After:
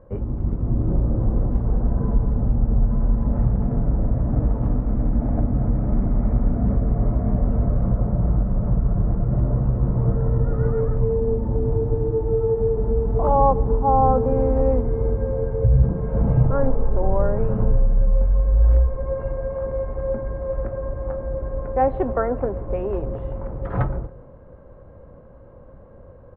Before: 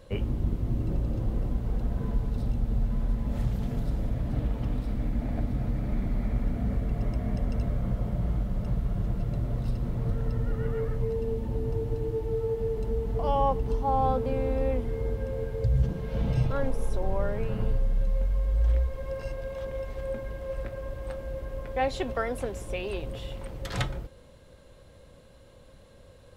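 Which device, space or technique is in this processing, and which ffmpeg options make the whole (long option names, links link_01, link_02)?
action camera in a waterproof case: -filter_complex "[0:a]asettb=1/sr,asplit=3[link_01][link_02][link_03];[link_01]atrim=end=9.284[link_04];[link_02]atrim=start=9.28:end=10.7,asetpts=PTS-STARTPTS,afade=type=in:duration=0.004:curve=qsin,afade=type=out:start_time=1.416:duration=0.004:curve=qsin,asplit=2[link_05][link_06];[link_06]adelay=15,volume=-6dB[link_07];[link_05][link_07]amix=inputs=2:normalize=0,atrim=end_sample=62622[link_08];[link_03]atrim=start=10.696[link_09];[link_04][link_08]acrossfade=duration=0.004:curve1=hsin:curve2=qsin[link_10];[link_10][link_09]acrossfade=duration=0.004:curve1=qsin:curve2=hsin,lowpass=frequency=1300:width=0.5412,lowpass=frequency=1300:width=1.3066,asplit=2[link_11][link_12];[link_12]adelay=139,lowpass=frequency=1300:poles=1,volume=-21dB,asplit=2[link_13][link_14];[link_14]adelay=139,lowpass=frequency=1300:poles=1,volume=0.53,asplit=2[link_15][link_16];[link_16]adelay=139,lowpass=frequency=1300:poles=1,volume=0.53,asplit=2[link_17][link_18];[link_18]adelay=139,lowpass=frequency=1300:poles=1,volume=0.53[link_19];[link_11][link_13][link_15][link_17][link_19]amix=inputs=5:normalize=0,dynaudnorm=framelen=110:gausssize=11:maxgain=6dB,volume=2.5dB" -ar 48000 -c:a aac -b:a 48k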